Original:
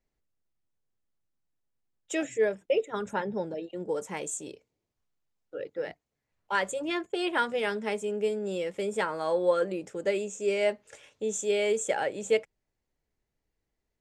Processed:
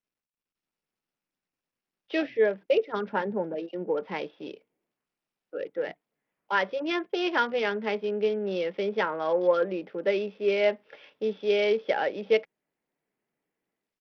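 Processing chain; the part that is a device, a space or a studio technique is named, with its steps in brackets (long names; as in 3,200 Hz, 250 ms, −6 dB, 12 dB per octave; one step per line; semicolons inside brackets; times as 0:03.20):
Bluetooth headset (high-pass filter 170 Hz 24 dB per octave; automatic gain control gain up to 11 dB; downsampling to 8,000 Hz; level −8 dB; SBC 64 kbit/s 44,100 Hz)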